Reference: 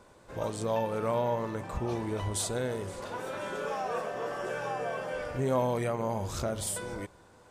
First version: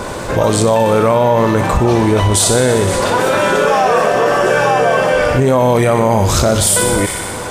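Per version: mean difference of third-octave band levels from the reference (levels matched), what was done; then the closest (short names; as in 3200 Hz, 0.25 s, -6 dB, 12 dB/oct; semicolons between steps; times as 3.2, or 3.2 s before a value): 4.0 dB: thin delay 61 ms, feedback 72%, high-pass 1800 Hz, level -8 dB; maximiser +23.5 dB; fast leveller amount 50%; gain -3 dB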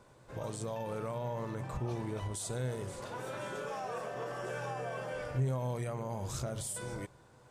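2.0 dB: dynamic EQ 8400 Hz, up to +6 dB, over -53 dBFS, Q 0.83; limiter -26.5 dBFS, peak gain reduction 11 dB; bell 130 Hz +13.5 dB 0.25 oct; gain -4 dB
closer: second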